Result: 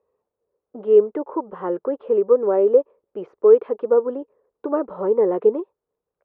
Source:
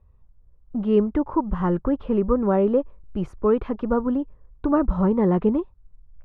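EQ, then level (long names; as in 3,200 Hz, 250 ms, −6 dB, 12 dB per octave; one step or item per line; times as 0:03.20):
high-pass with resonance 450 Hz, resonance Q 4.8
high-frequency loss of the air 230 metres
−3.5 dB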